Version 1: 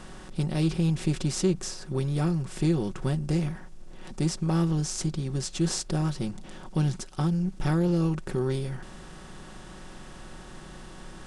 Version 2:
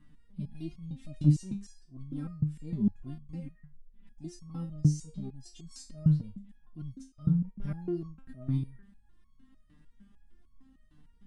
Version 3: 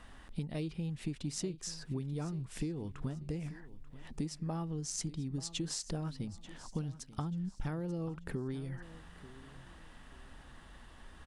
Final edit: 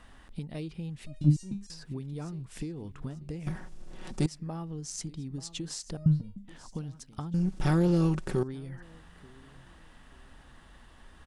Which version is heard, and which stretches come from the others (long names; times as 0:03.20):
3
0:01.06–0:01.70: punch in from 2
0:03.47–0:04.26: punch in from 1
0:05.97–0:06.48: punch in from 2
0:07.34–0:08.43: punch in from 1